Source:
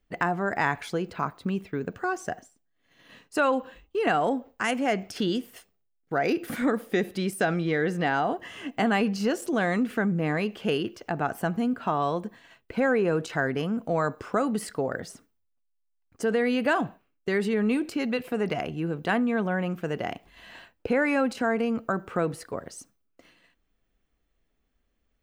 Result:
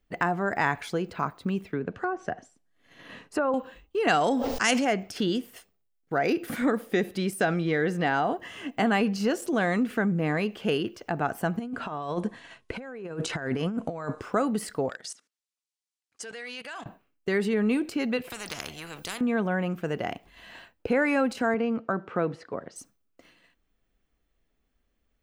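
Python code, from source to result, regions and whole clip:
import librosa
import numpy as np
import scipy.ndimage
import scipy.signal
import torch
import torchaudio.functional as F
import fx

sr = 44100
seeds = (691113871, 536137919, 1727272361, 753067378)

y = fx.chain(x, sr, fx.env_lowpass_down(base_hz=1100.0, full_db=-23.0),
    fx.band_squash(depth_pct=40), at=(1.7, 3.54))
y = fx.chain(y, sr, fx.peak_eq(hz=5300.0, db=14.5, octaves=1.4),
    fx.sustainer(db_per_s=29.0), at=(4.08, 4.85))
y = fx.chain(y, sr, fx.resample_bad(factor=2, down='none', up='filtered'),
    fx.over_compress(threshold_db=-30.0, ratio=-0.5), at=(11.59, 14.21))
y = fx.chain(y, sr, fx.weighting(curve='ITU-R 468'),
    fx.level_steps(step_db=19),
    fx.transformer_sat(knee_hz=1500.0), at=(14.89, 16.86))
y = fx.chain(y, sr, fx.peak_eq(hz=870.0, db=-8.0, octaves=2.7),
    fx.spectral_comp(ratio=4.0), at=(18.3, 19.21))
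y = fx.chain(y, sr, fx.highpass(hz=130.0, slope=12),
    fx.air_absorb(metres=160.0), at=(21.54, 22.76))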